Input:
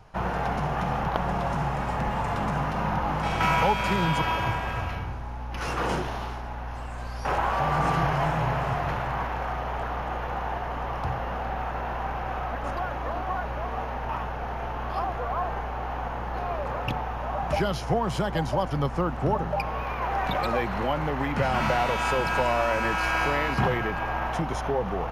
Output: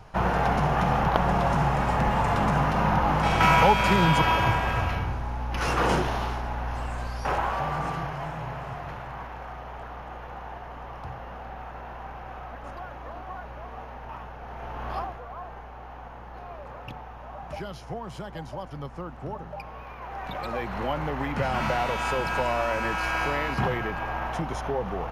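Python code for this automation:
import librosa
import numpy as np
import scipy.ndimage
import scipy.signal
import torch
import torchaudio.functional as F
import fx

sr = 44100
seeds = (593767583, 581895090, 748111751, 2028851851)

y = fx.gain(x, sr, db=fx.line((6.9, 4.0), (8.13, -8.5), (14.41, -8.5), (14.94, -1.0), (15.22, -10.5), (20.04, -10.5), (20.87, -2.0)))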